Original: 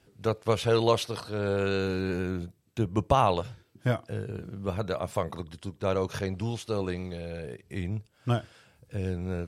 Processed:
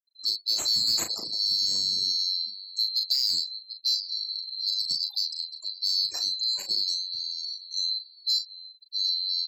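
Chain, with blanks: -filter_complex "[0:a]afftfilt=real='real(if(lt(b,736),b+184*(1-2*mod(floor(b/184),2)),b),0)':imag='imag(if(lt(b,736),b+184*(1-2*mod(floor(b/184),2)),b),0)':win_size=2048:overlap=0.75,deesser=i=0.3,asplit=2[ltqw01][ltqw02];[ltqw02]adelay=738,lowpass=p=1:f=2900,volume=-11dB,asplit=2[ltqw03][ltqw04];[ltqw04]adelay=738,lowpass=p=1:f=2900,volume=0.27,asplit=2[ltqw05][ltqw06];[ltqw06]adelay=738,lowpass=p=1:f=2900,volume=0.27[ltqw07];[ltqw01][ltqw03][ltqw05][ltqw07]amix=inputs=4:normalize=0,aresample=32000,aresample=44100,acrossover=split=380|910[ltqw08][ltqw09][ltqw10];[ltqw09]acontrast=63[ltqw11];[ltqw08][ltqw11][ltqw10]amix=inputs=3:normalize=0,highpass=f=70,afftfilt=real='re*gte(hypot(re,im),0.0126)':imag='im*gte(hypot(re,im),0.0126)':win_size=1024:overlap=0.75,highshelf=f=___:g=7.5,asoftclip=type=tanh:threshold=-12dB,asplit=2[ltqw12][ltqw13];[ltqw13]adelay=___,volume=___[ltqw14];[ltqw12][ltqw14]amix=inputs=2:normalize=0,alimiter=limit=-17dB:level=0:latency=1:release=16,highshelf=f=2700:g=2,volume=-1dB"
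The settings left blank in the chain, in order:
7400, 38, -7.5dB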